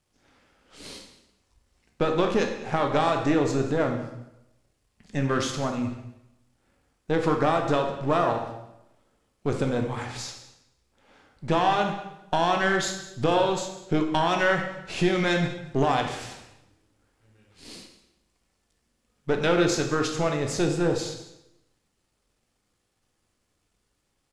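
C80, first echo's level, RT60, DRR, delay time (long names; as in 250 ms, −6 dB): 8.5 dB, −19.5 dB, 0.85 s, 3.5 dB, 201 ms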